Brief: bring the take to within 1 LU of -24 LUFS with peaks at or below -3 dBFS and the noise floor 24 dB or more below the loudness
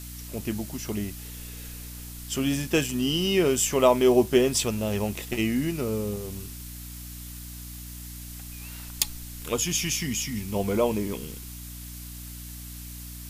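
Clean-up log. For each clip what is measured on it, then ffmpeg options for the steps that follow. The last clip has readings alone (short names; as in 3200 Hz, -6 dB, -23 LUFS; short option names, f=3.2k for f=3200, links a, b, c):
hum 60 Hz; harmonics up to 300 Hz; hum level -39 dBFS; noise floor -40 dBFS; noise floor target -50 dBFS; loudness -25.5 LUFS; peak -4.5 dBFS; loudness target -24.0 LUFS
-> -af "bandreject=f=60:t=h:w=6,bandreject=f=120:t=h:w=6,bandreject=f=180:t=h:w=6,bandreject=f=240:t=h:w=6,bandreject=f=300:t=h:w=6"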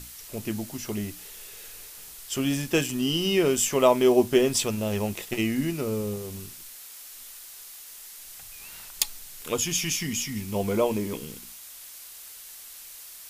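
hum none; noise floor -45 dBFS; noise floor target -50 dBFS
-> -af "afftdn=nr=6:nf=-45"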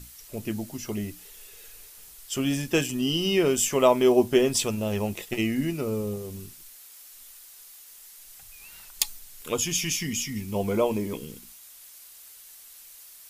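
noise floor -49 dBFS; noise floor target -50 dBFS
-> -af "afftdn=nr=6:nf=-49"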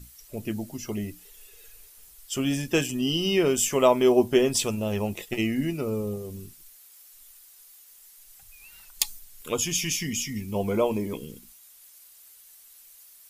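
noise floor -53 dBFS; loudness -26.0 LUFS; peak -4.0 dBFS; loudness target -24.0 LUFS
-> -af "volume=2dB,alimiter=limit=-3dB:level=0:latency=1"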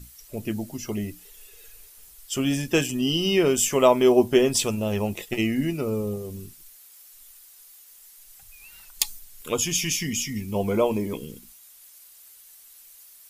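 loudness -24.0 LUFS; peak -3.0 dBFS; noise floor -51 dBFS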